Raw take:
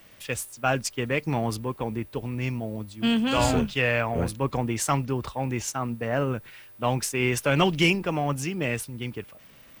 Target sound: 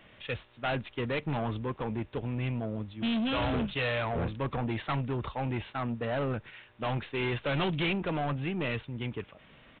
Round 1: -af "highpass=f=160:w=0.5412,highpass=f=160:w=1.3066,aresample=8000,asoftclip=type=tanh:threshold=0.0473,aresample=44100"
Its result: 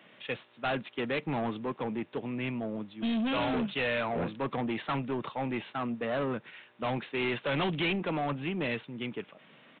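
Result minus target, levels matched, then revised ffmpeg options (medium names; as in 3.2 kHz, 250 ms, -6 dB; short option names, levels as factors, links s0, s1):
125 Hz band -5.5 dB
-af "aresample=8000,asoftclip=type=tanh:threshold=0.0473,aresample=44100"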